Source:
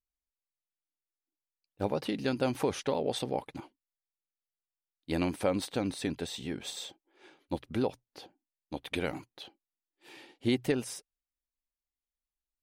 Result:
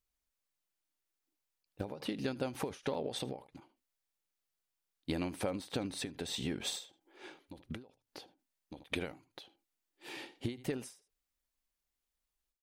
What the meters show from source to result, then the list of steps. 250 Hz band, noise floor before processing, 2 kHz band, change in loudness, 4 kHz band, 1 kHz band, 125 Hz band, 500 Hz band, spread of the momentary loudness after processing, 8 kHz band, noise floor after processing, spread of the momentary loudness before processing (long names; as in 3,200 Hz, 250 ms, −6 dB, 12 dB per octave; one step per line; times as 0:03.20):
−7.0 dB, below −85 dBFS, −4.5 dB, −6.0 dB, −2.5 dB, −8.0 dB, −5.5 dB, −8.0 dB, 17 LU, −2.5 dB, below −85 dBFS, 19 LU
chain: downward compressor 6 to 1, threshold −39 dBFS, peak gain reduction 15.5 dB
on a send: single-tap delay 77 ms −22 dB
on the sum: every ending faded ahead of time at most 160 dB per second
level +6 dB